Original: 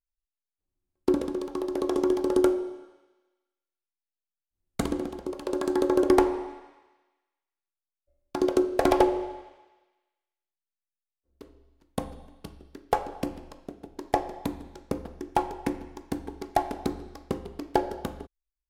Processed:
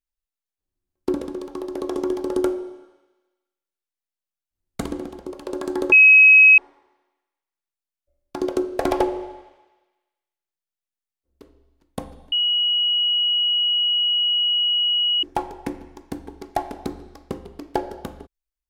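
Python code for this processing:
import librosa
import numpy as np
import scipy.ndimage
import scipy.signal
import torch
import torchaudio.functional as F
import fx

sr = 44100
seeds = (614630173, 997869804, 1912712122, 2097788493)

y = fx.edit(x, sr, fx.bleep(start_s=5.92, length_s=0.66, hz=2550.0, db=-7.0),
    fx.bleep(start_s=12.32, length_s=2.91, hz=2910.0, db=-17.0), tone=tone)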